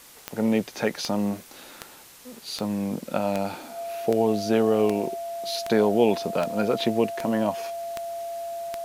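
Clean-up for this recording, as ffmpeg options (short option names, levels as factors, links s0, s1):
-af "adeclick=t=4,bandreject=f=680:w=30,afftdn=nr=23:nf=-47"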